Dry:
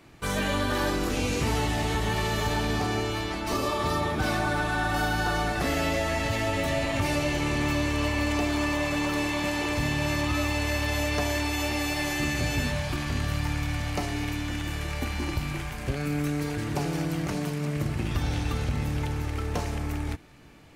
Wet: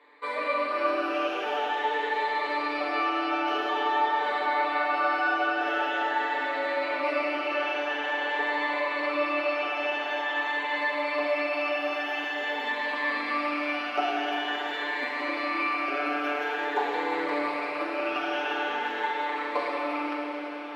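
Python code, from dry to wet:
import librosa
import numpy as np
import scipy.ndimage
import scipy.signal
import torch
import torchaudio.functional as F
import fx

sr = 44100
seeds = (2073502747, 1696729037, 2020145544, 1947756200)

p1 = fx.spec_ripple(x, sr, per_octave=1.0, drift_hz=0.47, depth_db=13)
p2 = scipy.signal.sosfilt(scipy.signal.bessel(8, 580.0, 'highpass', norm='mag', fs=sr, output='sos'), p1)
p3 = fx.rider(p2, sr, range_db=5, speed_s=0.5)
p4 = fx.quant_float(p3, sr, bits=4)
p5 = fx.air_absorb(p4, sr, metres=410.0)
p6 = p5 + 0.65 * np.pad(p5, (int(6.8 * sr / 1000.0), 0))[:len(p5)]
p7 = p6 + fx.echo_diffused(p6, sr, ms=681, feedback_pct=79, wet_db=-13.0, dry=0)
p8 = fx.rev_schroeder(p7, sr, rt60_s=3.2, comb_ms=33, drr_db=-0.5)
y = p8 * librosa.db_to_amplitude(-1.0)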